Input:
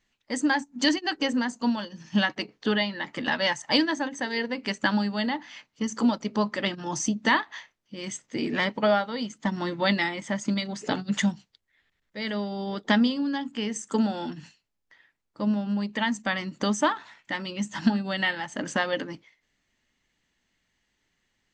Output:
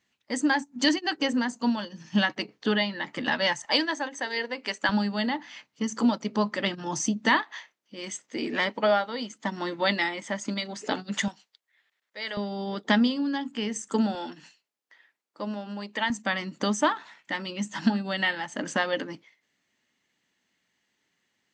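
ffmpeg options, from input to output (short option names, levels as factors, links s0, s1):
-af "asetnsamples=n=441:p=0,asendcmd='3.65 highpass f 400;4.89 highpass f 110;7.42 highpass f 260;11.28 highpass f 570;12.37 highpass f 140;14.15 highpass f 350;16.1 highpass f 160',highpass=100"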